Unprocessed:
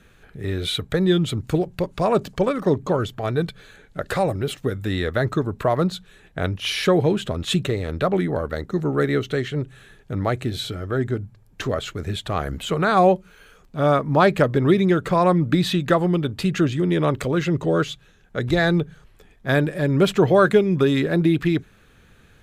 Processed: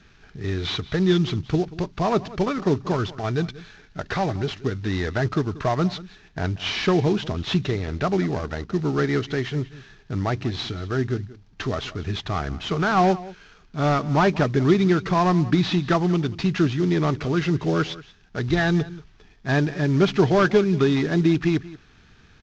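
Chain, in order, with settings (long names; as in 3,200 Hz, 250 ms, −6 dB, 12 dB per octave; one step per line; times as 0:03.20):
variable-slope delta modulation 32 kbit/s
parametric band 530 Hz −12.5 dB 0.25 octaves
single-tap delay 184 ms −18.5 dB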